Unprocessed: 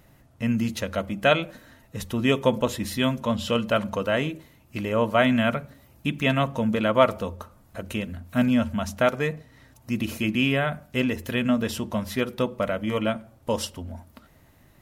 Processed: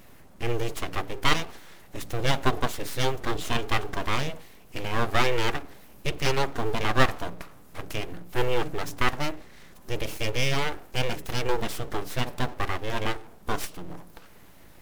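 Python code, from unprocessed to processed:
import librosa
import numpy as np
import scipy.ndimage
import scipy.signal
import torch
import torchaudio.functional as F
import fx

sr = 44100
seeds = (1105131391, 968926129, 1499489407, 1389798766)

y = fx.law_mismatch(x, sr, coded='mu')
y = np.abs(y)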